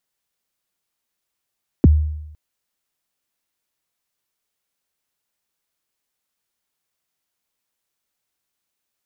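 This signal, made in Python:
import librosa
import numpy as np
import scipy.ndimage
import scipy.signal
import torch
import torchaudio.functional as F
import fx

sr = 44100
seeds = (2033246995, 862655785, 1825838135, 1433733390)

y = fx.drum_kick(sr, seeds[0], length_s=0.51, level_db=-5, start_hz=390.0, end_hz=76.0, sweep_ms=24.0, decay_s=0.88, click=False)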